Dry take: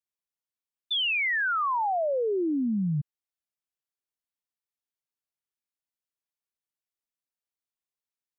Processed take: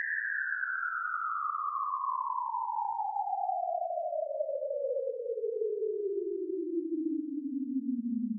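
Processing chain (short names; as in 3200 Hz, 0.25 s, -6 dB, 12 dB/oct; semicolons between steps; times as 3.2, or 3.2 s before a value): Paulstretch 6.2×, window 0.25 s, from 1.36; gain -7 dB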